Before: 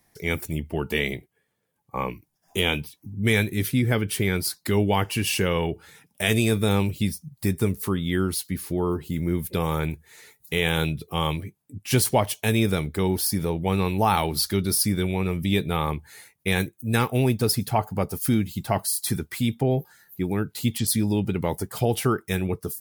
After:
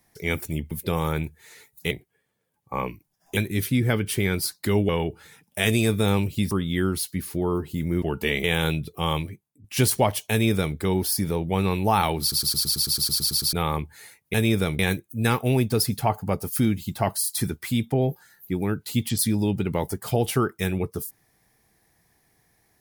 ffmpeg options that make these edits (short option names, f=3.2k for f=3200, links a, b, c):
-filter_complex "[0:a]asplit=23[a][b][c][d][e][f][g][h][i][j][k][l][m][n][o][p][q][r][s][t][u][v][w];[a]atrim=end=0.712[x];[b]atrim=start=9.378:end=10.582[y];[c]atrim=start=1.128:end=2.592[z];[d]atrim=start=3.388:end=4.912[aa];[e]atrim=start=5.518:end=7.142[ab];[f]atrim=start=7.868:end=9.382[ac];[g]atrim=start=0.708:end=1.132[ad];[h]atrim=start=10.578:end=11.78,asetpts=PTS-STARTPTS,afade=t=out:st=0.742:d=0.46:silence=0.125893[ae];[i]atrim=start=11.78:end=14.462,asetpts=PTS-STARTPTS,afade=t=in:d=0.004:c=hsin:silence=0.125893[af];[j]atrim=start=14.348:end=14.462[ag];[k]atrim=start=14.348:end=14.462[ah];[l]atrim=start=14.348:end=14.462[ai];[m]atrim=start=14.348:end=14.462[aj];[n]atrim=start=14.348:end=14.462[ak];[o]atrim=start=14.348:end=14.462[al];[p]atrim=start=14.348:end=14.462[am];[q]atrim=start=14.348:end=14.462[an];[r]atrim=start=14.348:end=14.462[ao];[s]atrim=start=14.348:end=14.462[ap];[t]atrim=start=14.348:end=14.462[aq];[u]atrim=start=15.668:end=16.482[ar];[v]atrim=start=12.448:end=12.902[as];[w]atrim=start=16.478[at];[x][y]acrossfade=d=0.004:c1=hsin:c2=hsin[au];[au][z]acrossfade=d=0.004:c1=hsin:c2=hsin[av];[av][aa]acrossfade=d=0.004:c1=hsin:c2=hsin[aw];[aw][ab]acrossfade=d=0.004:c1=hsin:c2=hsin[ax];[ax][ac]acrossfade=d=0.004:c1=hsin:c2=hsin[ay];[ay][ad]acrossfade=d=0.004:c1=hsin:c2=hsin[az];[ae][af]concat=n=2:v=0:a=1[ba];[az][ba]acrossfade=d=0.004:c1=hsin:c2=hsin[bb];[bb][ag]acrossfade=d=0.004:c1=hsin:c2=hsin[bc];[bc][ah]acrossfade=d=0.004:c1=hsin:c2=hsin[bd];[bd][ai]acrossfade=d=0.004:c1=hsin:c2=hsin[be];[be][aj]acrossfade=d=0.004:c1=hsin:c2=hsin[bf];[bf][ak]acrossfade=d=0.004:c1=hsin:c2=hsin[bg];[bg][al]acrossfade=d=0.004:c1=hsin:c2=hsin[bh];[bh][am]acrossfade=d=0.004:c1=hsin:c2=hsin[bi];[bi][an]acrossfade=d=0.004:c1=hsin:c2=hsin[bj];[bj][ao]acrossfade=d=0.004:c1=hsin:c2=hsin[bk];[bk][ap]acrossfade=d=0.004:c1=hsin:c2=hsin[bl];[bl][aq]acrossfade=d=0.004:c1=hsin:c2=hsin[bm];[bm][ar]acrossfade=d=0.004:c1=hsin:c2=hsin[bn];[bn][as]acrossfade=d=0.004:c1=hsin:c2=hsin[bo];[bo][at]acrossfade=d=0.004:c1=hsin:c2=hsin"